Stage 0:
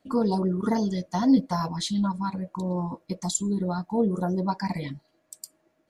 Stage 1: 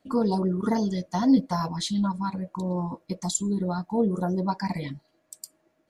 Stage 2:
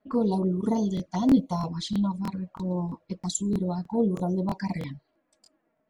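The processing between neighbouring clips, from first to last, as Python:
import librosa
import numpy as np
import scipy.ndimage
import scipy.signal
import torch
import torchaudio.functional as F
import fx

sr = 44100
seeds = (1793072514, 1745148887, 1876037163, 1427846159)

y1 = x
y2 = fx.env_flanger(y1, sr, rest_ms=4.8, full_db=-23.5)
y2 = fx.env_lowpass(y2, sr, base_hz=2000.0, full_db=-23.5)
y2 = fx.buffer_crackle(y2, sr, first_s=0.95, period_s=0.32, block=1024, kind='repeat')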